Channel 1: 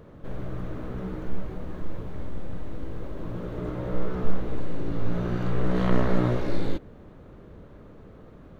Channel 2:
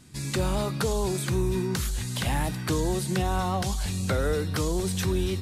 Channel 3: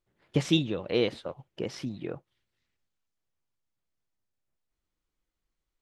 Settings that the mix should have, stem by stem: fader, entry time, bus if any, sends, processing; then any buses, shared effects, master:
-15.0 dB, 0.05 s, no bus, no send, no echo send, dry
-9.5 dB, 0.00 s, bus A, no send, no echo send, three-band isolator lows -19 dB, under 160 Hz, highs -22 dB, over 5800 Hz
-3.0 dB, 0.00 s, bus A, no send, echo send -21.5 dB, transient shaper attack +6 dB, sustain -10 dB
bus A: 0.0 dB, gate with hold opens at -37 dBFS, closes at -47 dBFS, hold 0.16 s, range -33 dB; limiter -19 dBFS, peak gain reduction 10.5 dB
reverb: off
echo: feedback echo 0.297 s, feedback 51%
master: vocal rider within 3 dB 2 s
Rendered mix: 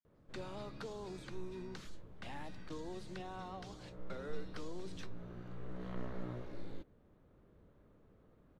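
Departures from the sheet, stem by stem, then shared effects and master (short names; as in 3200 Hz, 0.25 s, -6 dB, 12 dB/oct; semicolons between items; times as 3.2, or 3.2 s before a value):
stem 1 -15.0 dB -> -21.0 dB; stem 2 -9.5 dB -> -18.0 dB; stem 3: muted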